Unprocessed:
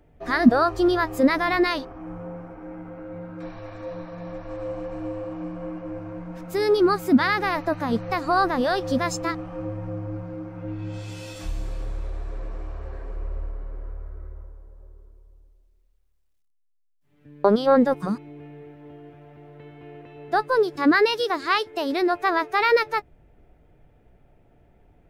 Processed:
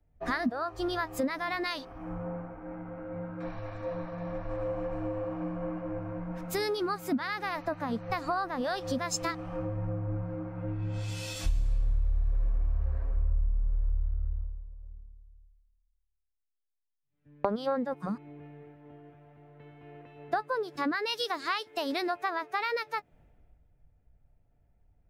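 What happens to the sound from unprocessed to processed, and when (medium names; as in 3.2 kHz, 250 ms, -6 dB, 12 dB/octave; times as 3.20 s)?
12.85–13.33 s: doubling 15 ms -10 dB
whole clip: peaking EQ 370 Hz -6.5 dB 0.54 oct; compression 12:1, threshold -31 dBFS; three bands expanded up and down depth 70%; trim +2.5 dB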